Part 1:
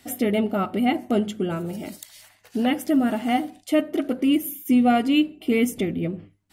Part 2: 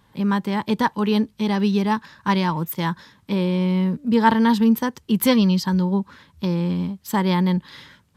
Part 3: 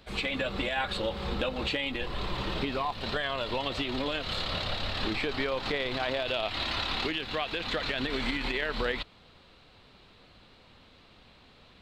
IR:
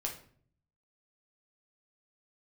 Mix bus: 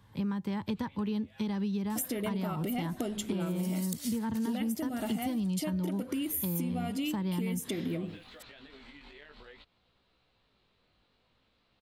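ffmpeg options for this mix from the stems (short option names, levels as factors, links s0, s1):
-filter_complex "[0:a]highpass=140,bass=f=250:g=0,treble=f=4000:g=11,acompressor=threshold=0.0398:ratio=6,adelay=1900,volume=1.26[s0];[1:a]equalizer=f=92:t=o:w=0.8:g=12,acrossover=split=300[s1][s2];[s2]acompressor=threshold=0.0398:ratio=6[s3];[s1][s3]amix=inputs=2:normalize=0,volume=0.531,asplit=2[s4][s5];[2:a]acompressor=threshold=0.02:ratio=4,flanger=delay=15.5:depth=5.4:speed=0.53,adelay=600,volume=0.237[s6];[s5]apad=whole_len=547356[s7];[s6][s7]sidechaincompress=threshold=0.0251:ratio=8:attack=45:release=390[s8];[s0][s4][s8]amix=inputs=3:normalize=0,acompressor=threshold=0.0316:ratio=6"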